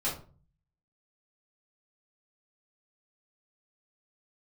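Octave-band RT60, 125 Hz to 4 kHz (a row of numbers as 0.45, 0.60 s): 0.80, 0.60, 0.45, 0.35, 0.30, 0.25 s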